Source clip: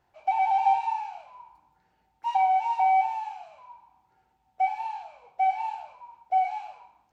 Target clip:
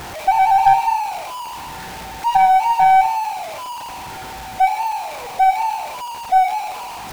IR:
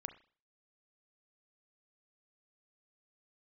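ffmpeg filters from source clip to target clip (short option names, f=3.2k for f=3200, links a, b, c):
-af "aeval=exprs='val(0)+0.5*0.0178*sgn(val(0))':c=same,aeval=exprs='0.266*(cos(1*acos(clip(val(0)/0.266,-1,1)))-cos(1*PI/2))+0.0211*(cos(4*acos(clip(val(0)/0.266,-1,1)))-cos(4*PI/2))+0.00841*(cos(6*acos(clip(val(0)/0.266,-1,1)))-cos(6*PI/2))':c=same,volume=9dB"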